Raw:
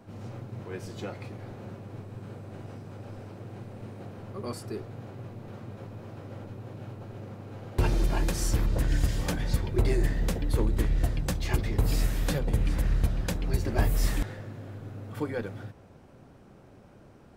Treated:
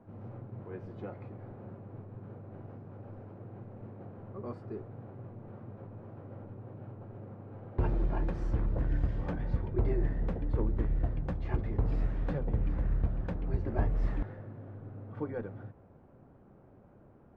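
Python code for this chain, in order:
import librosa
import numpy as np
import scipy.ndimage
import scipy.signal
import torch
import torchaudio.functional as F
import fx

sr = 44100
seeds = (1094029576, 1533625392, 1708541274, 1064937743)

y = scipy.signal.sosfilt(scipy.signal.butter(2, 1300.0, 'lowpass', fs=sr, output='sos'), x)
y = y * 10.0 ** (-4.5 / 20.0)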